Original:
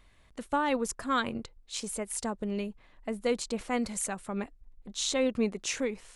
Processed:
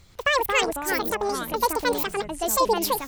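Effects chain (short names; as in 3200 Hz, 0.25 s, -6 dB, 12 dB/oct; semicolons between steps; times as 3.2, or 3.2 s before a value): speed mistake 7.5 ips tape played at 15 ips; spectral delete 2.58–2.86, 1100–2500 Hz; echoes that change speed 0.116 s, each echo -6 st, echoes 3, each echo -6 dB; gain +7 dB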